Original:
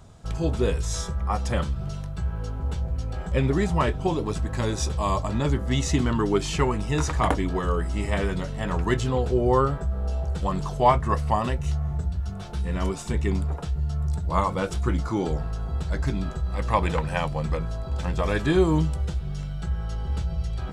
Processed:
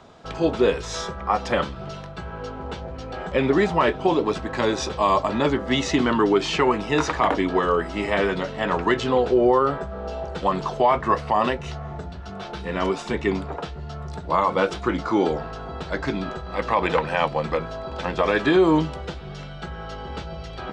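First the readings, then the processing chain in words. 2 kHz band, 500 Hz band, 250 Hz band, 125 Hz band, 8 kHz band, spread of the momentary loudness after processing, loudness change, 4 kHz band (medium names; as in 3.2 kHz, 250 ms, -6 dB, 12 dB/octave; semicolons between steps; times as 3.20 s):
+6.5 dB, +5.5 dB, +3.5 dB, -7.0 dB, -2.5 dB, 15 LU, +3.5 dB, +5.5 dB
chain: three-band isolator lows -19 dB, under 230 Hz, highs -23 dB, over 5.1 kHz; peak limiter -17 dBFS, peak gain reduction 10.5 dB; trim +8 dB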